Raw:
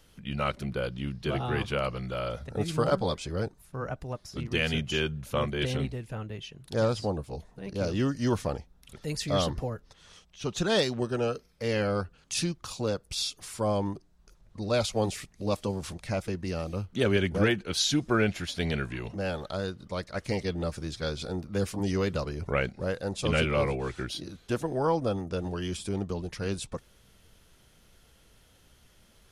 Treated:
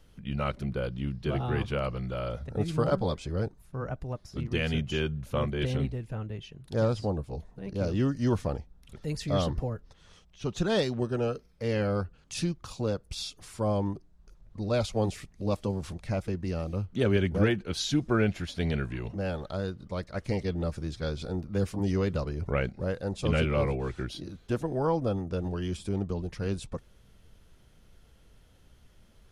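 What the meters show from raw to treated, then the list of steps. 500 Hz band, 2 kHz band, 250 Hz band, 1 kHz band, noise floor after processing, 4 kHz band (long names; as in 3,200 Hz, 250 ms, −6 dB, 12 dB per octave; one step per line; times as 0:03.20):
−1.0 dB, −4.0 dB, +0.5 dB, −2.5 dB, −59 dBFS, −5.5 dB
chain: spectral tilt −1.5 dB per octave
level −2.5 dB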